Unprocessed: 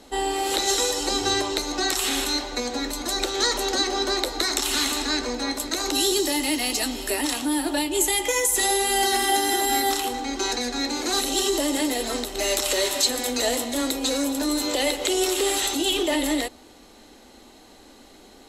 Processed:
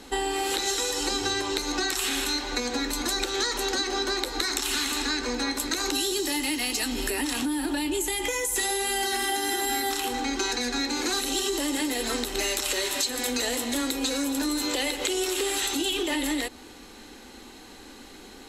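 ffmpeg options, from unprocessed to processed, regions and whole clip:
-filter_complex "[0:a]asettb=1/sr,asplit=3[s0][s1][s2];[s0]atrim=end=6.924[s3];[s1]atrim=start=6.92:end=8.56,asetpts=PTS-STARTPTS,afade=t=in:d=0.004:c=qsin,afade=t=out:st=1.636:d=0.004:c=qsin,lowshelf=f=380:g=5.5,acompressor=threshold=0.0562:ratio=3:attack=3.2:release=140:knee=1:detection=peak[s4];[s2]atrim=start=8.556[s5];[s3][s4]acrossfade=d=0.004:c1=hsin:c2=qsin[s6];[s6][s5]acrossfade=d=0.004:c1=qsin:c2=hsin,equalizer=f=630:t=o:w=0.33:g=-9,equalizer=f=1600:t=o:w=0.33:g=4,equalizer=f=2500:t=o:w=0.33:g=3,acompressor=threshold=0.0398:ratio=6,volume=1.5"

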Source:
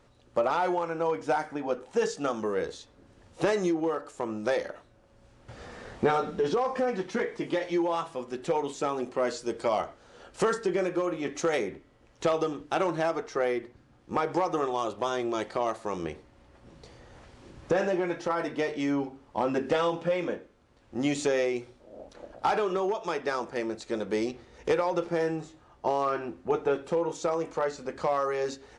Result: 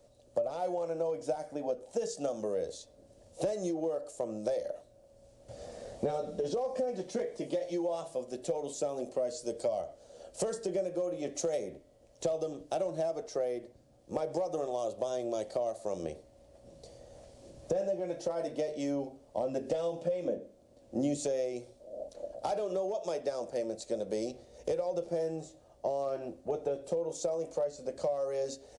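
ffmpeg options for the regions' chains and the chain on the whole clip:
-filter_complex "[0:a]asettb=1/sr,asplit=3[s0][s1][s2];[s0]atrim=end=20.254[s3];[s1]atrim=start=20.25:end=21.17,asetpts=PTS-STARTPTS,afade=t=in:d=0.004:c=qsin,afade=t=out:st=0.916:d=0.004:c=qsin,equalizer=f=260:t=o:w=2:g=8.5,bandreject=f=50:t=h:w=6,bandreject=f=100:t=h:w=6,bandreject=f=150:t=h:w=6,bandreject=f=200:t=h:w=6,bandreject=f=250:t=h:w=6,bandreject=f=300:t=h:w=6,bandreject=f=350:t=h:w=6,bandreject=f=400:t=h:w=6,bandreject=f=450:t=h:w=6[s4];[s2]atrim=start=21.166[s5];[s3][s4]acrossfade=d=0.004:c1=hsin:c2=qsin[s6];[s6][s5]acrossfade=d=0.004:c1=qsin:c2=hsin,firequalizer=gain_entry='entry(400,0);entry(590,13);entry(870,-5);entry(1300,-11);entry(4400,3);entry(8700,10)':delay=0.05:min_phase=1,acrossover=split=170[s7][s8];[s8]acompressor=threshold=0.0562:ratio=5[s9];[s7][s9]amix=inputs=2:normalize=0,volume=0.562"

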